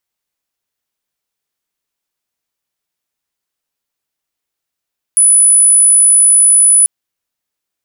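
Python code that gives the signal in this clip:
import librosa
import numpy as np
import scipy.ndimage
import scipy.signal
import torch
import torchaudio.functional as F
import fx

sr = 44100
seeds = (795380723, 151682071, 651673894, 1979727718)

y = 10.0 ** (-4.5 / 20.0) * np.sin(2.0 * np.pi * (9950.0 * (np.arange(round(1.69 * sr)) / sr)))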